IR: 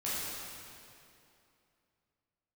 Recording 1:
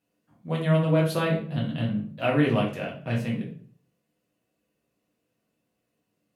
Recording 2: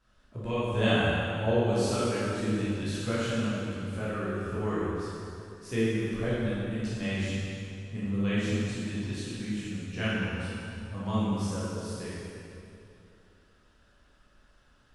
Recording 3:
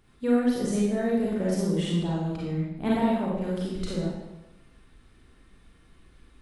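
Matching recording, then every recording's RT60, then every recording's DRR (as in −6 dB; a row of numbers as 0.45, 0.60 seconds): 2; 0.50, 2.7, 1.0 seconds; −3.5, −10.0, −6.5 decibels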